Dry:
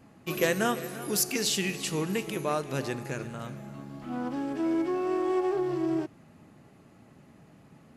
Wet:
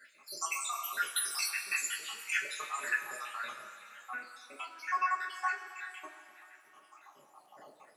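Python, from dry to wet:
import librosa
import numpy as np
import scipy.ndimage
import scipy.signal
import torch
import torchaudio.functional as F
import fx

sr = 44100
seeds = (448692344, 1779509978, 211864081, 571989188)

y = fx.spec_dropout(x, sr, seeds[0], share_pct=82)
y = fx.over_compress(y, sr, threshold_db=-35.0, ratio=-0.5)
y = fx.rev_double_slope(y, sr, seeds[1], early_s=0.21, late_s=3.1, knee_db=-18, drr_db=-4.5)
y = fx.dmg_crackle(y, sr, seeds[2], per_s=480.0, level_db=-64.0)
y = fx.filter_sweep_highpass(y, sr, from_hz=1500.0, to_hz=540.0, start_s=6.69, end_s=7.85, q=2.6)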